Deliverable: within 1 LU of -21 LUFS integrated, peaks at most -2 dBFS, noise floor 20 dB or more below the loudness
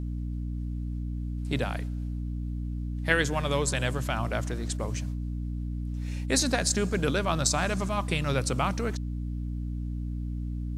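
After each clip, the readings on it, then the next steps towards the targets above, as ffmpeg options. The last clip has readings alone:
hum 60 Hz; harmonics up to 300 Hz; hum level -30 dBFS; loudness -30.0 LUFS; peak -5.5 dBFS; loudness target -21.0 LUFS
-> -af "bandreject=f=60:t=h:w=4,bandreject=f=120:t=h:w=4,bandreject=f=180:t=h:w=4,bandreject=f=240:t=h:w=4,bandreject=f=300:t=h:w=4"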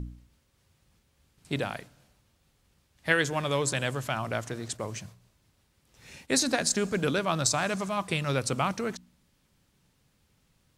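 hum none; loudness -29.0 LUFS; peak -5.5 dBFS; loudness target -21.0 LUFS
-> -af "volume=8dB,alimiter=limit=-2dB:level=0:latency=1"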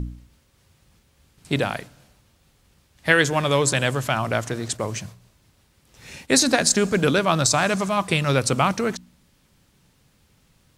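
loudness -21.0 LUFS; peak -2.0 dBFS; noise floor -62 dBFS

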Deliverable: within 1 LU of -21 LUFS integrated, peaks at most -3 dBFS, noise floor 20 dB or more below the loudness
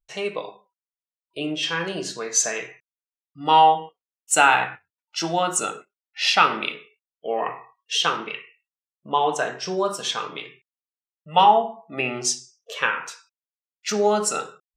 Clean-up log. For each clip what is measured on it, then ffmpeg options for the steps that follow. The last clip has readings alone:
loudness -22.5 LUFS; peak -3.0 dBFS; loudness target -21.0 LUFS
-> -af "volume=1.5dB,alimiter=limit=-3dB:level=0:latency=1"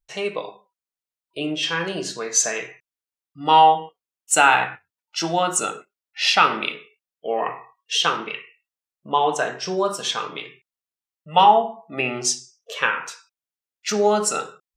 loudness -21.0 LUFS; peak -3.0 dBFS; noise floor -93 dBFS

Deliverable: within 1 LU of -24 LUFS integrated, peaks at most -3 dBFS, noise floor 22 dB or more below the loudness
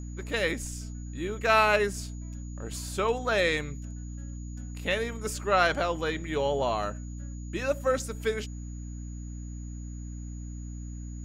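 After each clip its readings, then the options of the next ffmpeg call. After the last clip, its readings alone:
hum 60 Hz; harmonics up to 300 Hz; hum level -36 dBFS; steady tone 6800 Hz; tone level -53 dBFS; loudness -28.5 LUFS; peak -10.0 dBFS; loudness target -24.0 LUFS
-> -af "bandreject=f=60:t=h:w=6,bandreject=f=120:t=h:w=6,bandreject=f=180:t=h:w=6,bandreject=f=240:t=h:w=6,bandreject=f=300:t=h:w=6"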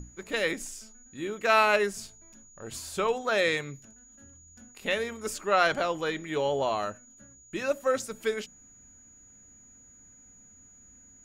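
hum none; steady tone 6800 Hz; tone level -53 dBFS
-> -af "bandreject=f=6.8k:w=30"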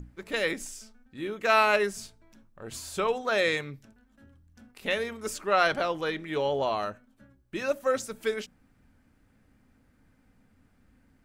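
steady tone none; loudness -28.5 LUFS; peak -10.5 dBFS; loudness target -24.0 LUFS
-> -af "volume=4.5dB"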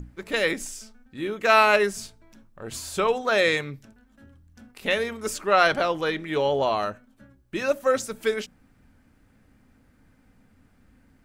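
loudness -24.0 LUFS; peak -6.0 dBFS; noise floor -61 dBFS

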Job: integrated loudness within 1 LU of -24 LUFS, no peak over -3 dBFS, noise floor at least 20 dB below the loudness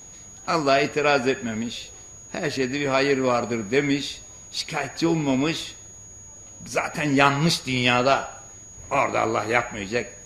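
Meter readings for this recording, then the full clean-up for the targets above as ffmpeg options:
steady tone 6700 Hz; tone level -42 dBFS; loudness -23.0 LUFS; peak -1.0 dBFS; loudness target -24.0 LUFS
-> -af "bandreject=f=6.7k:w=30"
-af "volume=-1dB,alimiter=limit=-3dB:level=0:latency=1"

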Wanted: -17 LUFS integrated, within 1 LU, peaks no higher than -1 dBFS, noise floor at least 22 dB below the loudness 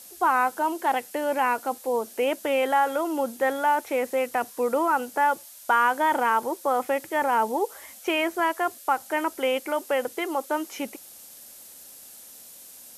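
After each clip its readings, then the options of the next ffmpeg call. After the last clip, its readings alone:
noise floor -47 dBFS; noise floor target -48 dBFS; loudness -25.5 LUFS; peak -10.0 dBFS; loudness target -17.0 LUFS
-> -af "afftdn=nr=6:nf=-47"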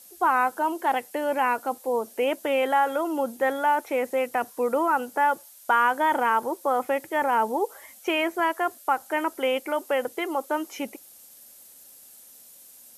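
noise floor -50 dBFS; loudness -25.5 LUFS; peak -10.0 dBFS; loudness target -17.0 LUFS
-> -af "volume=8.5dB"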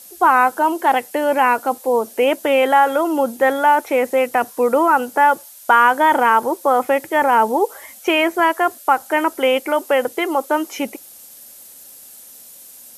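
loudness -17.0 LUFS; peak -1.5 dBFS; noise floor -42 dBFS

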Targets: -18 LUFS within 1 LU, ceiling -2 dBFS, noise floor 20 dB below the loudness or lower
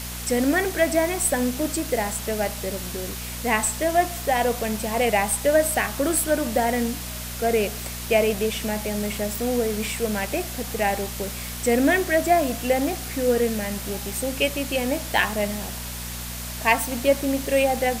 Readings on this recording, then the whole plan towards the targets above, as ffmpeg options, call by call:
hum 60 Hz; harmonics up to 240 Hz; hum level -33 dBFS; noise floor -33 dBFS; noise floor target -44 dBFS; loudness -23.5 LUFS; peak -4.5 dBFS; loudness target -18.0 LUFS
-> -af "bandreject=f=60:t=h:w=4,bandreject=f=120:t=h:w=4,bandreject=f=180:t=h:w=4,bandreject=f=240:t=h:w=4"
-af "afftdn=nr=11:nf=-33"
-af "volume=5.5dB,alimiter=limit=-2dB:level=0:latency=1"

